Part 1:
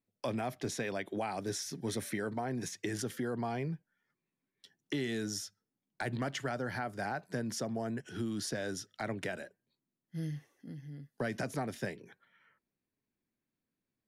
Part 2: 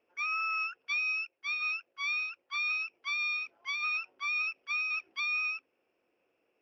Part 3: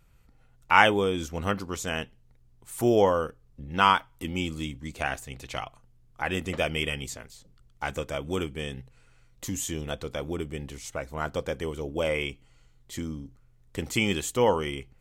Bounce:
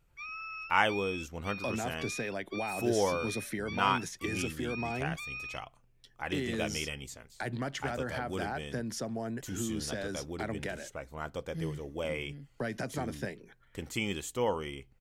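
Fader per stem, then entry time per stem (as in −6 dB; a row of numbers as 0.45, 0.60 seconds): 0.0, −9.5, −8.0 decibels; 1.40, 0.00, 0.00 seconds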